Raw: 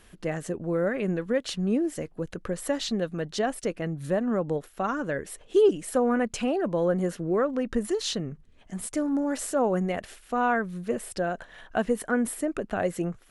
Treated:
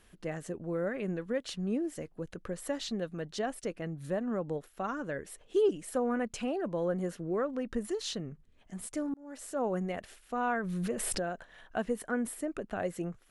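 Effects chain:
0:09.14–0:09.67: fade in
0:10.47–0:11.31: background raised ahead of every attack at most 20 dB per second
level −7 dB

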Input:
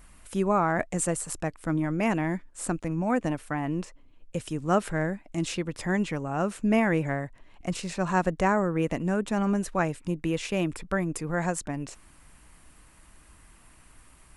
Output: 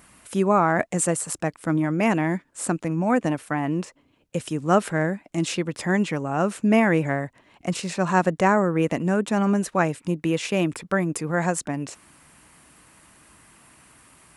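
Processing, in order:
high-pass filter 120 Hz 12 dB per octave
level +5 dB

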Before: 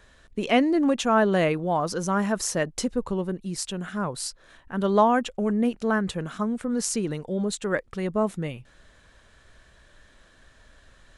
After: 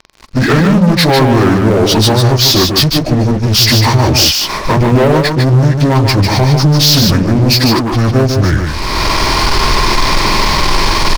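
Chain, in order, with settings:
phase-vocoder pitch shift without resampling −8.5 semitones
camcorder AGC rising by 36 dB per second
low-pass filter 6,800 Hz 12 dB per octave
parametric band 4,900 Hz +11.5 dB 0.72 octaves
notch filter 720 Hz, Q 12
leveller curve on the samples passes 5
on a send: single-tap delay 149 ms −5 dB

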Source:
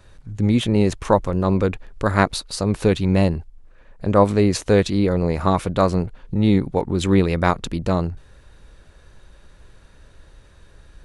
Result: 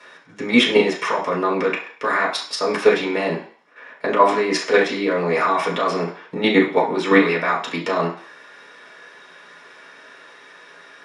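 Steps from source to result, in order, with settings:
spectral tilt +4 dB per octave
automatic gain control gain up to 4 dB
brickwall limiter −11.5 dBFS, peak gain reduction 10 dB
output level in coarse steps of 11 dB
band-pass filter 160–6,200 Hz
convolution reverb RT60 0.50 s, pre-delay 3 ms, DRR −5 dB
level −1 dB

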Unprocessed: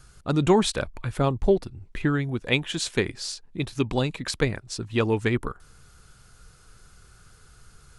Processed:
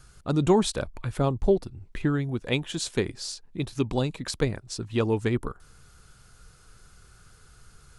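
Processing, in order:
dynamic equaliser 2,100 Hz, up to −6 dB, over −42 dBFS, Q 0.87
level −1 dB

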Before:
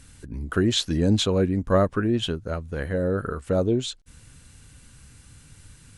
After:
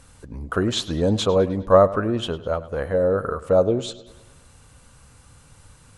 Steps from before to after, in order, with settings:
flat-topped bell 770 Hz +9.5 dB
on a send: bucket-brigade delay 103 ms, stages 4,096, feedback 52%, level −17 dB
on the sum: level −1.5 dB

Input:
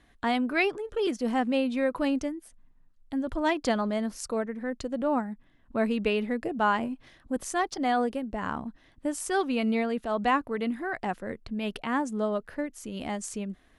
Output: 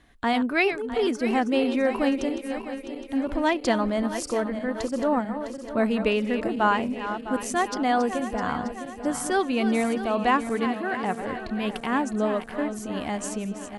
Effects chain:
feedback delay that plays each chunk backwards 328 ms, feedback 72%, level −10 dB
0:10.65–0:11.21: high-pass filter 100 Hz
level +3 dB

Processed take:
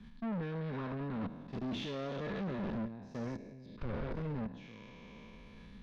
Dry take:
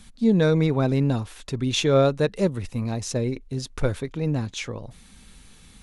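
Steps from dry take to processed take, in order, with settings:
peak hold with a decay on every bin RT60 2.13 s
0:03.66–0:04.12: high shelf with overshoot 4,500 Hz −9 dB, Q 1.5
output level in coarse steps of 24 dB
brickwall limiter −23 dBFS, peak gain reduction 13.5 dB
hollow resonant body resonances 210/990/1,700 Hz, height 11 dB
tube saturation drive 34 dB, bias 0.3
high-frequency loss of the air 270 metres
multiband upward and downward expander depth 40%
level −1 dB

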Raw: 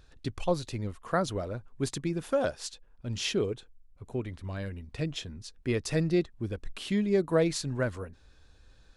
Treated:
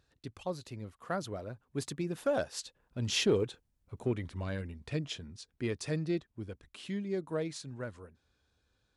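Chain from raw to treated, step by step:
source passing by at 0:03.68, 10 m/s, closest 8.9 metres
high-pass filter 74 Hz
in parallel at −9 dB: asymmetric clip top −28.5 dBFS

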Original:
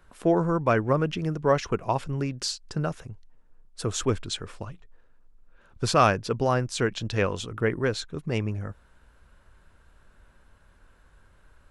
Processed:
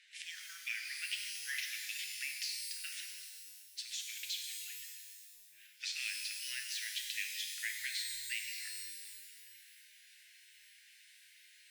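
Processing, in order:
Butterworth high-pass 1,900 Hz 72 dB per octave
downward compressor 5 to 1, threshold −49 dBFS, peak gain reduction 20.5 dB
high-frequency loss of the air 94 metres
reverb with rising layers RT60 1.9 s, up +12 semitones, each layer −2 dB, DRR 2 dB
level +11 dB

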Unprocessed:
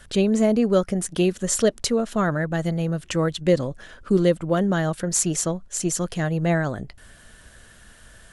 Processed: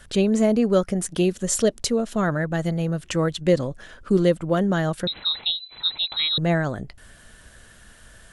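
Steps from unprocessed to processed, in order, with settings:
0:01.02–0:02.23: dynamic equaliser 1,400 Hz, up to −4 dB, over −37 dBFS, Q 0.87
0:05.07–0:06.38: voice inversion scrambler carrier 4,000 Hz

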